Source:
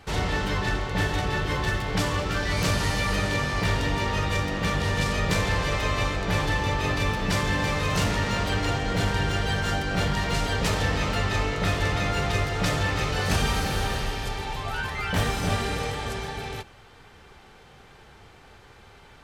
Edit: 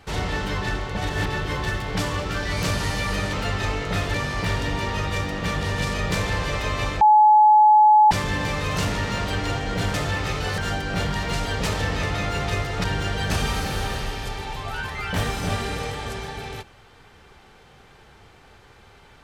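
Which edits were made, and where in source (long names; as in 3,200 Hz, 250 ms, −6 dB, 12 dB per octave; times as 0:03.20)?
0:00.97–0:01.26: reverse
0:06.20–0:07.30: beep over 852 Hz −10 dBFS
0:09.13–0:09.59: swap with 0:12.66–0:13.30
0:11.04–0:11.85: move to 0:03.33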